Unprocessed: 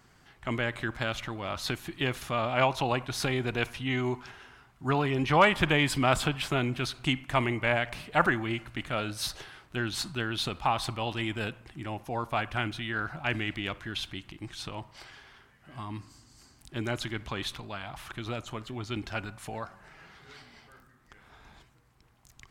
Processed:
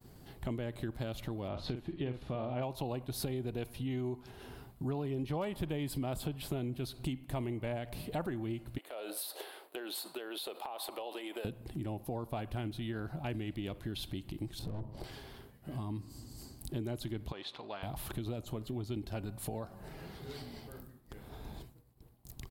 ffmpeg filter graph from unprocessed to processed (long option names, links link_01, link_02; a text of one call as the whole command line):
ffmpeg -i in.wav -filter_complex "[0:a]asettb=1/sr,asplit=3[link_01][link_02][link_03];[link_01]atrim=end=1.484[link_04];[link_02]atrim=start=1.48:end=2.63,asetpts=PTS-STARTPTS,afade=type=in:duration=0.004:curve=qsin,afade=type=out:start_time=1.146:duration=0.004:curve=qsin,lowpass=3100,asplit=2[link_05][link_06];[link_06]adelay=48,volume=-8dB[link_07];[link_05][link_07]amix=inputs=2:normalize=0,atrim=end_sample=50715[link_08];[link_03]atrim=start=2.626[link_09];[link_04][link_08]acrossfade=duration=0.004:curve1=hsin:curve2=qsin[link_10];[link_10][link_09]acrossfade=duration=0.004:curve1=qsin:curve2=hsin,asettb=1/sr,asplit=3[link_11][link_12][link_13];[link_11]atrim=end=8.784[link_14];[link_12]atrim=start=8.78:end=11.45,asetpts=PTS-STARTPTS,afade=type=in:duration=0.004:curve=qsin,afade=type=out:start_time=2.666:duration=0.004:curve=qsin,highpass=frequency=440:width=0.5412,highpass=frequency=440:width=1.3066,equalizer=frequency=5900:width=1.5:gain=-8.5,acompressor=threshold=-38dB:ratio=10:attack=3.2:release=140:knee=1:detection=peak[link_15];[link_13]atrim=start=11.446[link_16];[link_14][link_15]acrossfade=duration=0.004:curve1=hsin:curve2=qsin[link_17];[link_17][link_16]acrossfade=duration=0.004:curve1=qsin:curve2=hsin,asettb=1/sr,asplit=3[link_18][link_19][link_20];[link_18]atrim=end=14.594[link_21];[link_19]atrim=start=14.59:end=15.04,asetpts=PTS-STARTPTS,afade=type=in:duration=0.004:curve=qsin,afade=type=out:start_time=0.446:duration=0.004:curve=qsin,tiltshelf=frequency=1200:gain=9.5,aeval=exprs='(tanh(89.1*val(0)+0.55)-tanh(0.55))/89.1':channel_layout=same[link_22];[link_20]atrim=start=15.036[link_23];[link_21][link_22]acrossfade=duration=0.004:curve1=hsin:curve2=qsin[link_24];[link_24][link_23]acrossfade=duration=0.004:curve1=qsin:curve2=hsin,asettb=1/sr,asplit=3[link_25][link_26][link_27];[link_25]atrim=end=17.324[link_28];[link_26]atrim=start=17.32:end=17.83,asetpts=PTS-STARTPTS,afade=type=in:duration=0.004:curve=qsin,afade=type=out:start_time=0.506:duration=0.004:curve=qsin,aeval=exprs='if(lt(val(0),0),0.708*val(0),val(0))':channel_layout=same,highpass=780,lowpass=5400,aemphasis=mode=reproduction:type=bsi[link_29];[link_27]atrim=start=17.826[link_30];[link_28][link_29]acrossfade=duration=0.004:curve1=hsin:curve2=qsin[link_31];[link_31][link_30]acrossfade=duration=0.004:curve1=qsin:curve2=hsin,agate=range=-33dB:threshold=-56dB:ratio=3:detection=peak,firequalizer=gain_entry='entry(420,0);entry(1300,-16);entry(2200,-15);entry(4200,-6);entry(6000,-12);entry(12000,5)':delay=0.05:min_phase=1,acompressor=threshold=-49dB:ratio=4,volume=11dB" out.wav